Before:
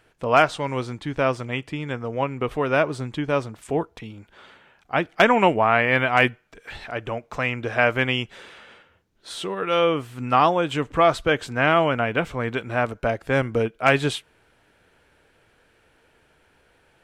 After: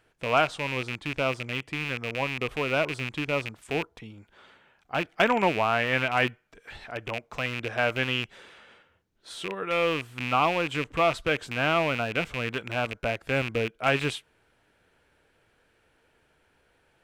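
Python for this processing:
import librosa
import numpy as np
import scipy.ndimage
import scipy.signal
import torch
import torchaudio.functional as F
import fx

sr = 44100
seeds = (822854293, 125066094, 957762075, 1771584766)

y = fx.rattle_buzz(x, sr, strikes_db=-31.0, level_db=-14.0)
y = F.gain(torch.from_numpy(y), -6.0).numpy()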